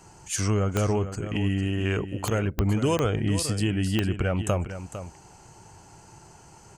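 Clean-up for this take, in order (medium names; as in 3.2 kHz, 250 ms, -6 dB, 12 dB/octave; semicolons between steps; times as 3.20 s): de-click; inverse comb 453 ms -11 dB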